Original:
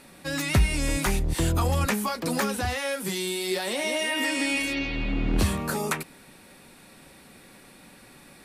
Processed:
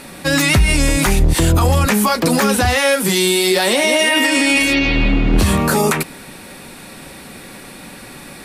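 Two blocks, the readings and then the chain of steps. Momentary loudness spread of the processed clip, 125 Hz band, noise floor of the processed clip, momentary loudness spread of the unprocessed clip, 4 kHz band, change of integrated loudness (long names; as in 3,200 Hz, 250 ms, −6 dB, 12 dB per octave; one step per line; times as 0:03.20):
3 LU, +10.5 dB, −37 dBFS, 5 LU, +13.0 dB, +12.0 dB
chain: boost into a limiter +19.5 dB
level −4.5 dB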